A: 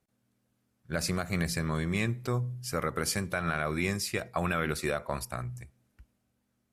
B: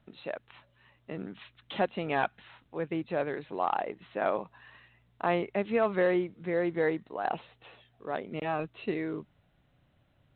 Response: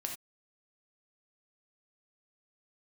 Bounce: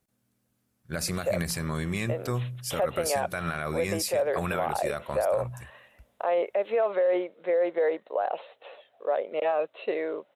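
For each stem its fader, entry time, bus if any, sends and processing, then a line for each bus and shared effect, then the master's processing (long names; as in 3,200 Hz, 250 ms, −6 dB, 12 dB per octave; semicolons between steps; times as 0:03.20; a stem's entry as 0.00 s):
+0.5 dB, 0.00 s, no send, high-shelf EQ 8,200 Hz +7.5 dB
+2.0 dB, 1.00 s, no send, high-pass with resonance 550 Hz, resonance Q 4.9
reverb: not used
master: brickwall limiter −18 dBFS, peak gain reduction 13 dB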